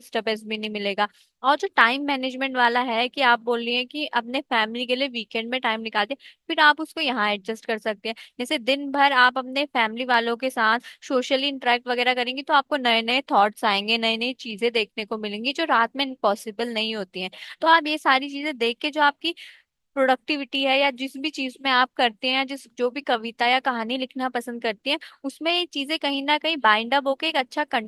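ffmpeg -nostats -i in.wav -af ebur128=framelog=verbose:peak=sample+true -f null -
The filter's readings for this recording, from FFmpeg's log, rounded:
Integrated loudness:
  I:         -22.6 LUFS
  Threshold: -32.7 LUFS
Loudness range:
  LRA:         3.0 LU
  Threshold: -42.7 LUFS
  LRA low:   -24.5 LUFS
  LRA high:  -21.5 LUFS
Sample peak:
  Peak:       -1.6 dBFS
True peak:
  Peak:       -1.6 dBFS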